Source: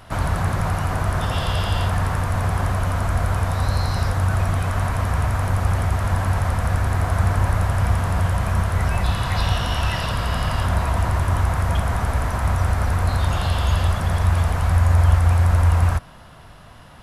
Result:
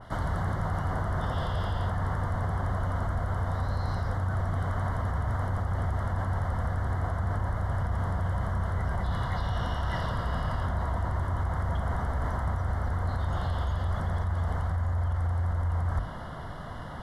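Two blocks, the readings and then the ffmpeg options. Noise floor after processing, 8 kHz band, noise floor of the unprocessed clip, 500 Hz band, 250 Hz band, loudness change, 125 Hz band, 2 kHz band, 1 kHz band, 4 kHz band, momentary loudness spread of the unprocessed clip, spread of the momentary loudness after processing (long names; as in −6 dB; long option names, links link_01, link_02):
−38 dBFS, below −15 dB, −43 dBFS, −8.0 dB, −7.5 dB, −9.5 dB, −9.5 dB, −10.5 dB, −8.5 dB, −15.0 dB, 6 LU, 2 LU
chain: -af "aemphasis=mode=reproduction:type=cd,bandreject=frequency=50:width_type=h:width=6,bandreject=frequency=100:width_type=h:width=6,alimiter=limit=-13dB:level=0:latency=1:release=46,areverse,acompressor=threshold=-33dB:ratio=6,areverse,asuperstop=centerf=2500:order=8:qfactor=3.5,adynamicequalizer=threshold=0.00178:dfrequency=2100:dqfactor=0.7:tfrequency=2100:tqfactor=0.7:attack=5:release=100:ratio=0.375:range=2.5:mode=cutabove:tftype=highshelf,volume=6dB"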